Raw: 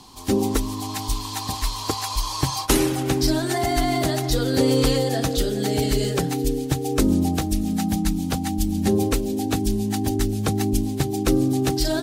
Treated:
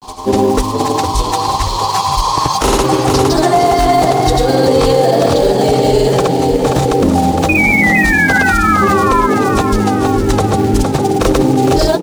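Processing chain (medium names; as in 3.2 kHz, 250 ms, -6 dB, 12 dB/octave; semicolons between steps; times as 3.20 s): low-pass 9.3 kHz 12 dB/octave; high-order bell 720 Hz +8.5 dB; painted sound fall, 7.48–9.23 s, 1–2.5 kHz -20 dBFS; in parallel at -5.5 dB: companded quantiser 4-bit; on the sum: granulator, pitch spread up and down by 0 st; on a send: frequency-shifting echo 460 ms, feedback 49%, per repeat +47 Hz, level -9 dB; on the sum: loudness maximiser +7 dB; trim -1 dB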